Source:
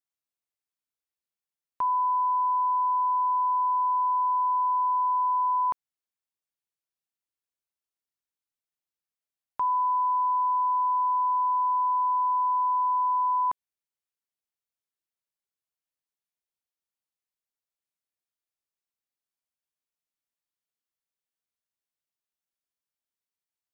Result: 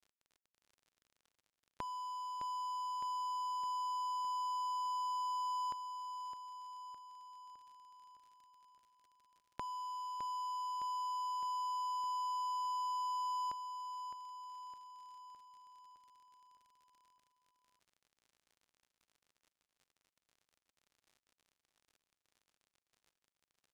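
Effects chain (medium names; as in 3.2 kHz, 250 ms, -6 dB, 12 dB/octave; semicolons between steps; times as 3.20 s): jump at every zero crossing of -49 dBFS; peaking EQ 1 kHz -12 dB 1.5 oct; compression 16:1, threshold -47 dBFS, peak gain reduction 12 dB; small samples zeroed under -52 dBFS; distance through air 51 m; feedback delay 611 ms, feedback 58%, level -9 dB; trim +6 dB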